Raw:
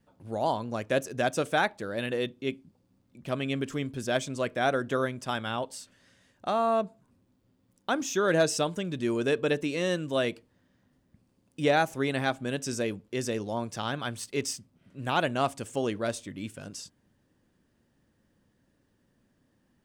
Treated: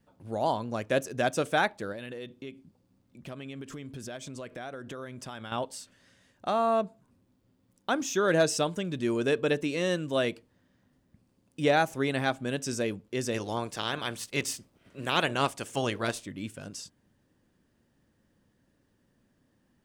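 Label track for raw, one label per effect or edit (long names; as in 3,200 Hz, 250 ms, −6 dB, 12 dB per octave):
1.920000	5.520000	downward compressor, threshold −37 dBFS
13.330000	16.240000	ceiling on every frequency bin ceiling under each frame's peak by 13 dB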